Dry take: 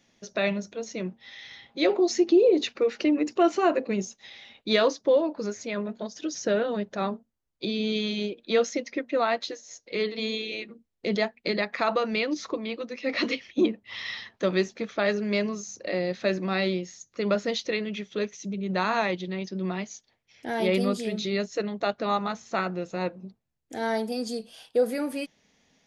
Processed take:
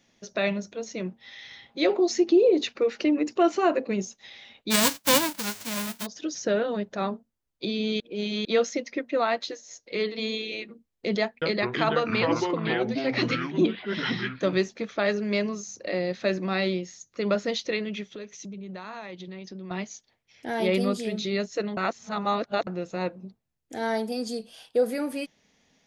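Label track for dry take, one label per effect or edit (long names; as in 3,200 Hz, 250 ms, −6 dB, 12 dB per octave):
4.700000	6.050000	spectral envelope flattened exponent 0.1
8.000000	8.450000	reverse
11.210000	14.580000	delay with pitch and tempo change per echo 206 ms, each echo −5 semitones, echoes 2
18.130000	19.710000	downward compressor 4 to 1, threshold −37 dBFS
21.770000	22.670000	reverse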